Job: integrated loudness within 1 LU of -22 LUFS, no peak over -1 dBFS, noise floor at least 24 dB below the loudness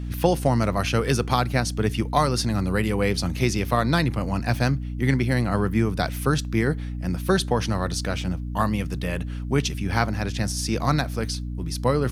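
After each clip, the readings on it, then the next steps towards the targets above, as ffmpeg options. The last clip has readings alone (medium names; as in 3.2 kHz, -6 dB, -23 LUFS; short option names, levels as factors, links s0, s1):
hum 60 Hz; highest harmonic 300 Hz; hum level -28 dBFS; loudness -24.0 LUFS; peak level -4.5 dBFS; loudness target -22.0 LUFS
-> -af "bandreject=f=60:t=h:w=4,bandreject=f=120:t=h:w=4,bandreject=f=180:t=h:w=4,bandreject=f=240:t=h:w=4,bandreject=f=300:t=h:w=4"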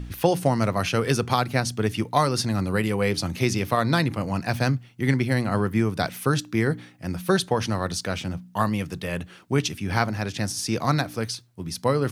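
hum not found; loudness -25.0 LUFS; peak level -5.5 dBFS; loudness target -22.0 LUFS
-> -af "volume=1.41"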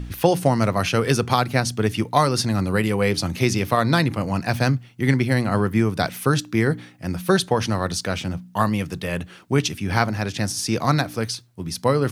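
loudness -22.0 LUFS; peak level -2.5 dBFS; noise floor -47 dBFS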